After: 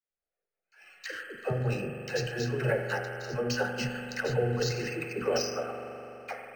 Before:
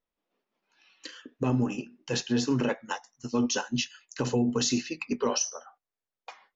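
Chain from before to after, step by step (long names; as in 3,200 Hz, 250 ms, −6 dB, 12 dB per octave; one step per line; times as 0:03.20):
noise gate with hold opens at −60 dBFS
in parallel at +2.5 dB: downward compressor, threshold −36 dBFS, peak gain reduction 14 dB
on the sum: brickwall limiter −20.5 dBFS, peak gain reduction 8 dB
phaser with its sweep stopped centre 1,000 Hz, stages 6
all-pass dispersion lows, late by 105 ms, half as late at 420 Hz
on a send at −4 dB: convolution reverb RT60 3.4 s, pre-delay 41 ms
on the sum: linearly interpolated sample-rate reduction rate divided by 4×
level +5 dB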